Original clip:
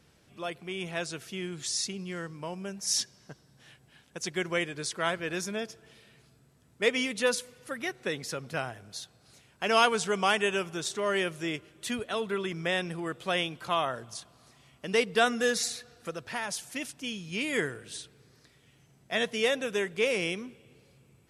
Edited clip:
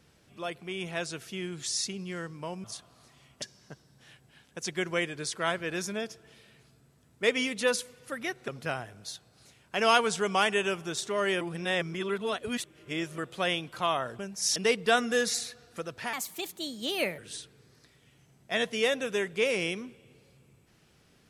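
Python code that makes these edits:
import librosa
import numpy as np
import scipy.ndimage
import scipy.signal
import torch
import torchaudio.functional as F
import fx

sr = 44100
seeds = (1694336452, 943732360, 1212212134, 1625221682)

y = fx.edit(x, sr, fx.swap(start_s=2.64, length_s=0.37, other_s=14.07, other_length_s=0.78),
    fx.cut(start_s=8.07, length_s=0.29),
    fx.reverse_span(start_s=11.29, length_s=1.77),
    fx.speed_span(start_s=16.42, length_s=1.37, speed=1.3), tone=tone)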